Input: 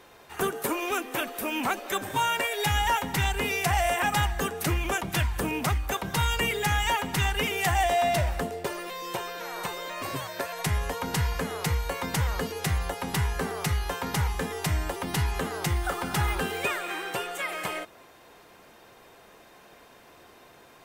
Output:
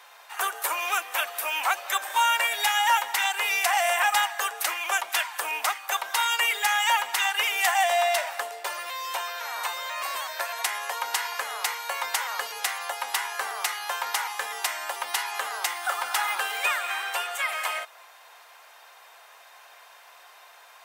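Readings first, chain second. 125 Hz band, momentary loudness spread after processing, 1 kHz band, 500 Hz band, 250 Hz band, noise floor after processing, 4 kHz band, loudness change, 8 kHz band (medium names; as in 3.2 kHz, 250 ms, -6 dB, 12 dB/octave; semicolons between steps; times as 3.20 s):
under -40 dB, 9 LU, +3.0 dB, -3.5 dB, under -25 dB, -52 dBFS, +4.5 dB, +2.0 dB, +4.5 dB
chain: high-pass 730 Hz 24 dB/octave; trim +4.5 dB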